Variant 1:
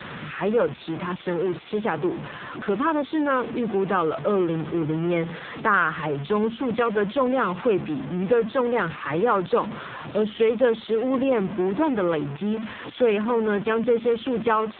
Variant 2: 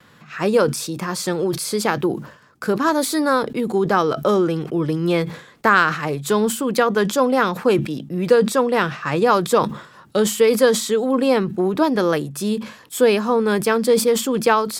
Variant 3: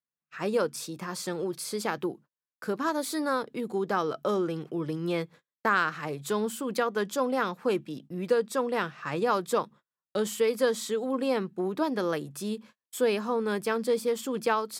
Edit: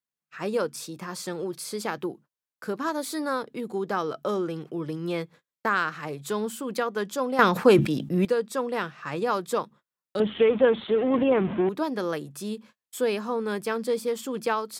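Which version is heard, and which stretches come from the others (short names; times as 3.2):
3
7.39–8.25 from 2
10.2–11.69 from 1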